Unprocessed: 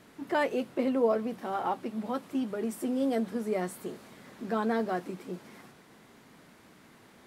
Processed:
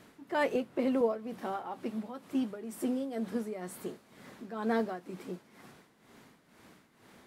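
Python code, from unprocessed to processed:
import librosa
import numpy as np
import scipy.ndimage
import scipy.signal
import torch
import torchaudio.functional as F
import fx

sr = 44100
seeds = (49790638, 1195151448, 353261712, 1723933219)

y = x * (1.0 - 0.73 / 2.0 + 0.73 / 2.0 * np.cos(2.0 * np.pi * 2.1 * (np.arange(len(x)) / sr)))
y = fx.band_squash(y, sr, depth_pct=100, at=(0.55, 1.01))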